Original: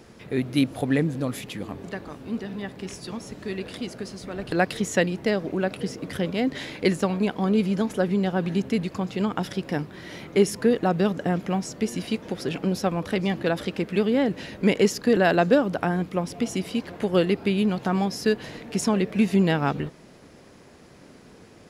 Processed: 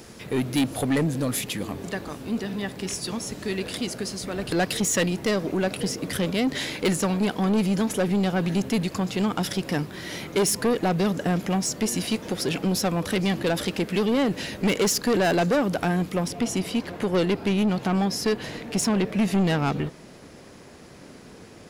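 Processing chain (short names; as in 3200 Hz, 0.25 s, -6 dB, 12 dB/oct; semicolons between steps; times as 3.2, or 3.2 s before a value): high shelf 4700 Hz +11 dB, from 16.28 s +3 dB; soft clip -21 dBFS, distortion -9 dB; gain +3.5 dB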